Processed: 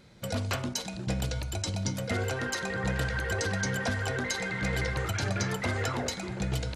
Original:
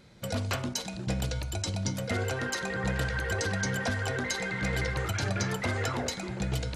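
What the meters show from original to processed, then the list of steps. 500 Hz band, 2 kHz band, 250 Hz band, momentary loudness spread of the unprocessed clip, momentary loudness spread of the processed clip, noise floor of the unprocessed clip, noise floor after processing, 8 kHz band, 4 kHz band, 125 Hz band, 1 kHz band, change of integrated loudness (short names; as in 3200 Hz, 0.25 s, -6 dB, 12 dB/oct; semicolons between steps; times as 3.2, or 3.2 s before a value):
0.0 dB, 0.0 dB, 0.0 dB, 4 LU, 4 LU, -39 dBFS, -39 dBFS, 0.0 dB, 0.0 dB, 0.0 dB, 0.0 dB, 0.0 dB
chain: echo 1.015 s -21 dB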